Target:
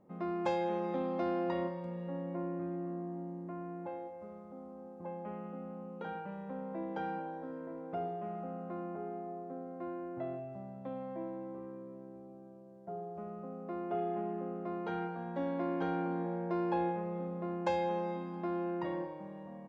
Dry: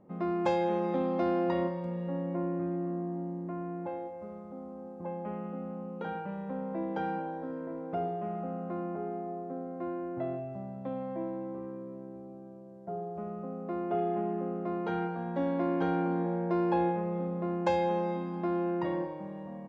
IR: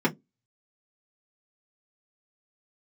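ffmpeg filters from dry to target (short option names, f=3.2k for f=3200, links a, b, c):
-af "lowshelf=f=420:g=-3,volume=-3.5dB"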